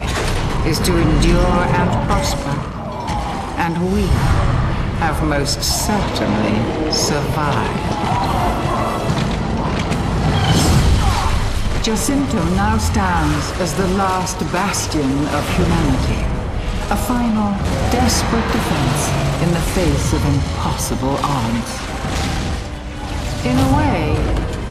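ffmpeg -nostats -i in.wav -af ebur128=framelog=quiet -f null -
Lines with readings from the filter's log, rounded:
Integrated loudness:
  I:         -17.7 LUFS
  Threshold: -27.7 LUFS
Loudness range:
  LRA:         2.2 LU
  Threshold: -37.8 LUFS
  LRA low:   -19.1 LUFS
  LRA high:  -16.9 LUFS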